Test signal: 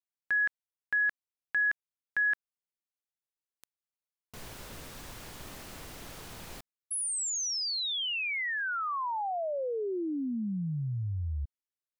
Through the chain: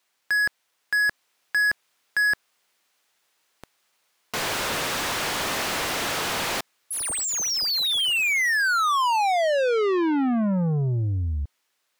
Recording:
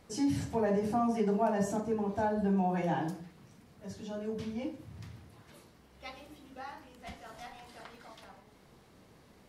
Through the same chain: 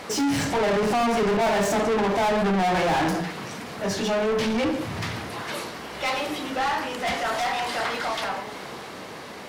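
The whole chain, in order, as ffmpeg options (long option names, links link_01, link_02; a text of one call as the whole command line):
ffmpeg -i in.wav -filter_complex "[0:a]dynaudnorm=framelen=120:gausssize=17:maxgain=3dB,asplit=2[link_01][link_02];[link_02]highpass=frequency=720:poles=1,volume=34dB,asoftclip=type=tanh:threshold=-16dB[link_03];[link_01][link_03]amix=inputs=2:normalize=0,lowpass=frequency=4000:poles=1,volume=-6dB" out.wav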